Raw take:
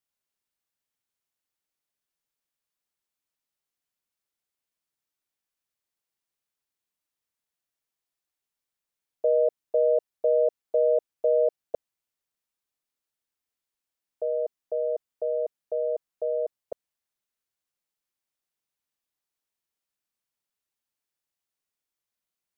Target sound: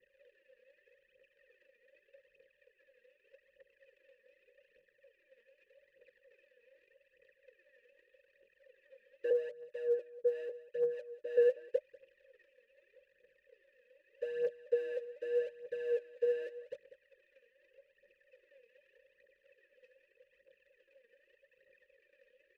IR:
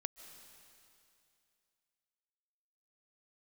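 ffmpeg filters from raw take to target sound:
-filter_complex "[0:a]aeval=exprs='val(0)+0.5*0.0168*sgn(val(0))':channel_layout=same,asettb=1/sr,asplit=3[link_01][link_02][link_03];[link_01]atrim=end=9.304[link_04];[link_02]atrim=start=9.3:end=11.37,asetpts=PTS-STARTPTS,afade=type=in:duration=0.004:curve=qsin,afade=type=out:start_time=2.066:duration=0.004:curve=qsin,acrossover=split=520[link_05][link_06];[link_05]aeval=exprs='val(0)*(1-1/2+1/2*cos(2*PI*3.2*n/s))':channel_layout=same[link_07];[link_06]aeval=exprs='val(0)*(1-1/2-1/2*cos(2*PI*3.2*n/s))':channel_layout=same[link_08];[link_07][link_08]amix=inputs=2:normalize=0[link_09];[link_03]atrim=start=11.366[link_10];[link_04][link_09]acrossfade=duration=0.004:curve1=hsin:curve2=qsin[link_11];[link_11][link_10]acrossfade=duration=0.004:curve1=qsin:curve2=hsin,asoftclip=type=tanh:threshold=-19dB,asplit=3[link_12][link_13][link_14];[link_12]bandpass=frequency=530:width_type=q:width=8,volume=0dB[link_15];[link_13]bandpass=frequency=1840:width_type=q:width=8,volume=-6dB[link_16];[link_14]bandpass=frequency=2480:width_type=q:width=8,volume=-9dB[link_17];[link_15][link_16][link_17]amix=inputs=3:normalize=0,lowshelf=frequency=210:gain=7,asplit=2[link_18][link_19];[link_19]adelay=22,volume=-12dB[link_20];[link_18][link_20]amix=inputs=2:normalize=0,anlmdn=0.000251,asuperstop=centerf=720:order=20:qfactor=2.6,equalizer=frequency=270:width_type=o:width=0.39:gain=-4,aecho=1:1:193:0.158,aphaser=in_gain=1:out_gain=1:delay=4.4:decay=0.62:speed=0.83:type=triangular"

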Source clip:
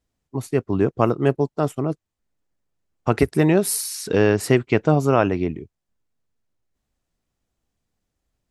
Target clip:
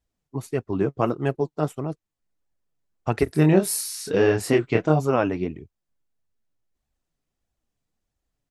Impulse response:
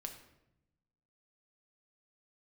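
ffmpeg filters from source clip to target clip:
-filter_complex "[0:a]flanger=delay=1.1:depth=6.2:regen=47:speed=1.6:shape=sinusoidal,asplit=3[link_01][link_02][link_03];[link_01]afade=type=out:start_time=3.26:duration=0.02[link_04];[link_02]asplit=2[link_05][link_06];[link_06]adelay=26,volume=-4dB[link_07];[link_05][link_07]amix=inputs=2:normalize=0,afade=type=in:start_time=3.26:duration=0.02,afade=type=out:start_time=4.99:duration=0.02[link_08];[link_03]afade=type=in:start_time=4.99:duration=0.02[link_09];[link_04][link_08][link_09]amix=inputs=3:normalize=0"

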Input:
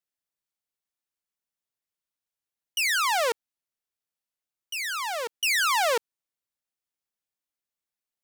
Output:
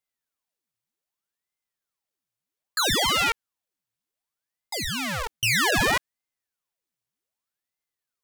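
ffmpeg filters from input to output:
ffmpeg -i in.wav -af "aeval=exprs='if(lt(val(0),0),0.447*val(0),val(0))':channel_layout=same,aeval=exprs='val(0)*sin(2*PI*1100*n/s+1100*0.9/0.64*sin(2*PI*0.64*n/s))':channel_layout=same,volume=7dB" out.wav

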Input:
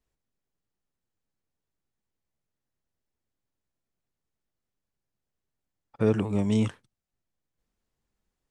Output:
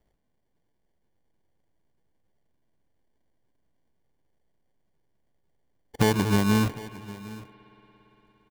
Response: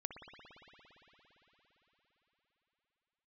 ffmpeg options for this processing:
-filter_complex "[0:a]acrusher=samples=34:mix=1:aa=0.000001,acompressor=threshold=-27dB:ratio=6,aecho=1:1:757:0.119,asplit=2[link_01][link_02];[1:a]atrim=start_sample=2205[link_03];[link_02][link_03]afir=irnorm=-1:irlink=0,volume=-9.5dB[link_04];[link_01][link_04]amix=inputs=2:normalize=0,volume=7.5dB"

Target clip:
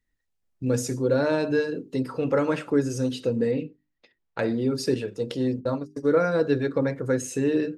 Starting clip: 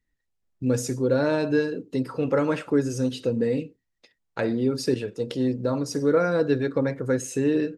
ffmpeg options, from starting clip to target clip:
ffmpeg -i in.wav -filter_complex "[0:a]asettb=1/sr,asplit=3[link_01][link_02][link_03];[link_01]atrim=end=3.514[link_04];[link_02]atrim=start=3.51:end=4.39,asetpts=PTS-STARTPTS,afade=type=in:duration=0.004:curve=qsin,afade=type=out:start_time=0.876:duration=0.004:curve=qsin,lowpass=3700[link_05];[link_03]atrim=start=4.386[link_06];[link_04][link_05]acrossfade=duration=0.004:curve1=hsin:curve2=qsin[link_07];[link_07][link_06]acrossfade=duration=0.004:curve1=qsin:curve2=hsin,asplit=3[link_08][link_09][link_10];[link_08]afade=type=out:start_time=5.59:duration=0.02[link_11];[link_09]agate=range=-46dB:threshold=-24dB:ratio=16:detection=peak,afade=type=in:start_time=5.59:duration=0.02,afade=type=out:start_time=6.45:duration=0.02[link_12];[link_10]afade=type=in:start_time=6.45:duration=0.02[link_13];[link_11][link_12][link_13]amix=inputs=3:normalize=0,bandreject=frequency=50:width_type=h:width=6,bandreject=frequency=100:width_type=h:width=6,bandreject=frequency=150:width_type=h:width=6,bandreject=frequency=200:width_type=h:width=6,bandreject=frequency=250:width_type=h:width=6,bandreject=frequency=300:width_type=h:width=6,bandreject=frequency=350:width_type=h:width=6,bandreject=frequency=400:width_type=h:width=6" out.wav

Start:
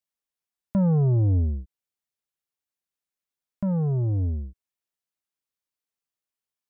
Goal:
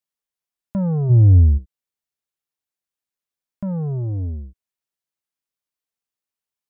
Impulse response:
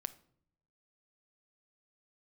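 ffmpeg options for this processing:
-filter_complex "[0:a]asplit=3[link_01][link_02][link_03];[link_01]afade=type=out:start_time=1.09:duration=0.02[link_04];[link_02]aemphasis=mode=reproduction:type=bsi,afade=type=in:start_time=1.09:duration=0.02,afade=type=out:start_time=1.57:duration=0.02[link_05];[link_03]afade=type=in:start_time=1.57:duration=0.02[link_06];[link_04][link_05][link_06]amix=inputs=3:normalize=0"

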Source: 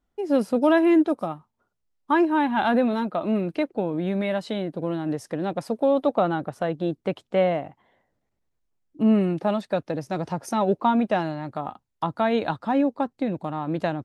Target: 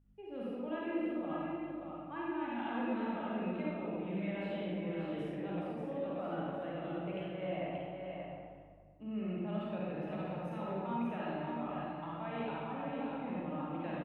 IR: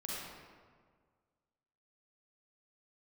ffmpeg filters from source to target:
-filter_complex "[0:a]aeval=exprs='val(0)+0.00251*(sin(2*PI*50*n/s)+sin(2*PI*2*50*n/s)/2+sin(2*PI*3*50*n/s)/3+sin(2*PI*4*50*n/s)/4+sin(2*PI*5*50*n/s)/5)':channel_layout=same,areverse,acompressor=threshold=-30dB:ratio=6,areverse,highshelf=frequency=3900:width_type=q:width=3:gain=-12.5,aecho=1:1:581:0.531[link_01];[1:a]atrim=start_sample=2205[link_02];[link_01][link_02]afir=irnorm=-1:irlink=0,volume=-8.5dB"

